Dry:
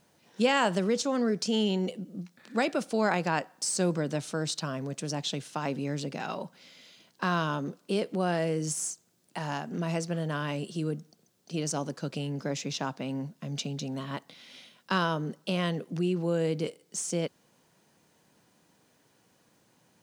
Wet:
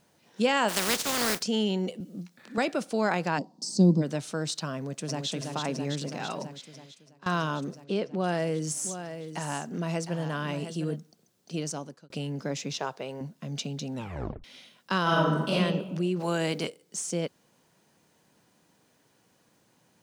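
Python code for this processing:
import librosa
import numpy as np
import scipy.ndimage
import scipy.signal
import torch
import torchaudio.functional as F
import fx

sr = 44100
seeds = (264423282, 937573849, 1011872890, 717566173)

y = fx.spec_flatten(x, sr, power=0.32, at=(0.68, 1.41), fade=0.02)
y = fx.band_squash(y, sr, depth_pct=40, at=(2.0, 2.58))
y = fx.curve_eq(y, sr, hz=(110.0, 200.0, 310.0, 510.0, 970.0, 1500.0, 2700.0, 4600.0, 10000.0), db=(0, 13, 7, -3, -4, -27, -18, 2, -13), at=(3.37, 4.01), fade=0.02)
y = fx.echo_throw(y, sr, start_s=4.75, length_s=0.54, ms=330, feedback_pct=80, wet_db=-4.5)
y = fx.air_absorb(y, sr, metres=110.0, at=(7.84, 8.24))
y = fx.echo_single(y, sr, ms=709, db=-10.0, at=(8.83, 10.95), fade=0.02)
y = fx.low_shelf_res(y, sr, hz=330.0, db=-6.0, q=3.0, at=(12.79, 13.21))
y = fx.reverb_throw(y, sr, start_s=15.02, length_s=0.52, rt60_s=1.2, drr_db=-6.5)
y = fx.spec_clip(y, sr, under_db=16, at=(16.19, 16.66), fade=0.02)
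y = fx.edit(y, sr, fx.fade_out_to(start_s=6.44, length_s=0.82, floor_db=-21.5),
    fx.fade_out_span(start_s=11.56, length_s=0.54),
    fx.tape_stop(start_s=13.94, length_s=0.5), tone=tone)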